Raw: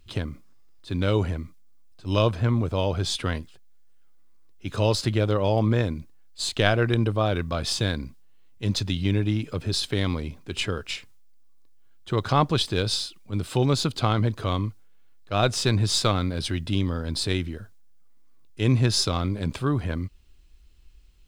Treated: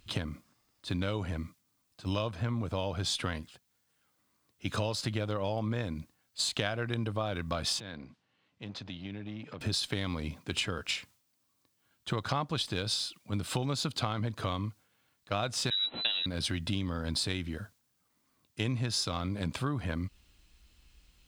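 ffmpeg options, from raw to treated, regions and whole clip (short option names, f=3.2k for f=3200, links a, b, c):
-filter_complex "[0:a]asettb=1/sr,asplit=3[a][b][c];[a]atrim=end=7.804[d];[b]atrim=start=7.8:end=9.61,asetpts=PTS-STARTPTS,afade=t=in:d=0.004:c=qsin,afade=t=out:st=1.806:d=0.004:c=qsin,acompressor=threshold=-42dB:ratio=2.5:attack=3.2:release=140:knee=1:detection=peak,aeval=exprs='clip(val(0),-1,0.0075)':c=same,highpass=110,lowpass=3.8k[e];[c]atrim=start=9.606[f];[d][e]acrossfade=d=0.004:c1=hsin:c2=qsin[g];[g][f]acrossfade=d=0.004:c1=qsin:c2=hsin,asettb=1/sr,asplit=3[h][i][j];[h]atrim=end=15.704[k];[i]atrim=start=15.7:end=16.26,asetpts=PTS-STARTPTS,afade=t=in:d=0.004:c=qsin,afade=t=out:st=0.556:d=0.004:c=qsin,agate=range=-12dB:threshold=-26dB:ratio=16:release=100:detection=peak,acrusher=bits=6:mix=0:aa=0.5,lowpass=f=3.4k:t=q:w=0.5098,lowpass=f=3.4k:t=q:w=0.6013,lowpass=f=3.4k:t=q:w=0.9,lowpass=f=3.4k:t=q:w=2.563,afreqshift=-4000[l];[j]atrim=start=16.256[m];[k][l]acrossfade=d=0.004:c1=hsin:c2=qsin[n];[n][m]acrossfade=d=0.004:c1=qsin:c2=hsin,highpass=f=130:p=1,equalizer=f=390:t=o:w=0.57:g=-6.5,acompressor=threshold=-32dB:ratio=6,volume=3dB"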